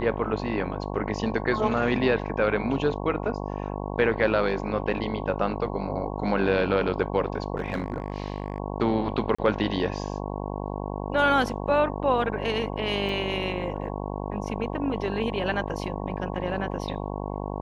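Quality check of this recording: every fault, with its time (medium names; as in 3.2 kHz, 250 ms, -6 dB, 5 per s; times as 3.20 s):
buzz 50 Hz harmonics 22 -32 dBFS
7.56–8.60 s: clipped -22.5 dBFS
9.35–9.38 s: dropout 35 ms
13.09 s: dropout 2.2 ms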